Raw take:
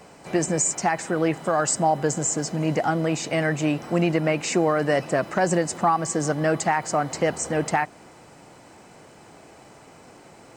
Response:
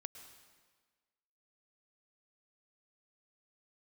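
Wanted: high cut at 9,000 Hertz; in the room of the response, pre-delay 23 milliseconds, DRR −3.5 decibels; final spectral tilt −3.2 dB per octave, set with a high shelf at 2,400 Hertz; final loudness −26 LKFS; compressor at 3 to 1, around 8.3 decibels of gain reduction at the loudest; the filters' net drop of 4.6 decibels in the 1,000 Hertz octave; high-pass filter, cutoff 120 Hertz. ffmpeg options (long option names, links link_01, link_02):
-filter_complex "[0:a]highpass=120,lowpass=9000,equalizer=frequency=1000:width_type=o:gain=-8,highshelf=frequency=2400:gain=8,acompressor=threshold=-25dB:ratio=3,asplit=2[link_01][link_02];[1:a]atrim=start_sample=2205,adelay=23[link_03];[link_02][link_03]afir=irnorm=-1:irlink=0,volume=8dB[link_04];[link_01][link_04]amix=inputs=2:normalize=0,volume=-3.5dB"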